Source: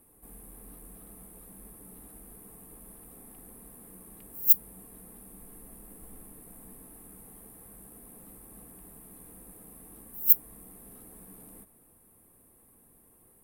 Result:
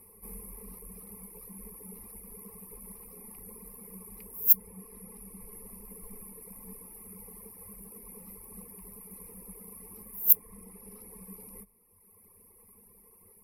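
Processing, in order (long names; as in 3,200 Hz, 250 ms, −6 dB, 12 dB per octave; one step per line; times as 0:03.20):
reverb reduction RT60 2 s
EQ curve with evenly spaced ripples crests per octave 0.85, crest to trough 16 dB
level +1.5 dB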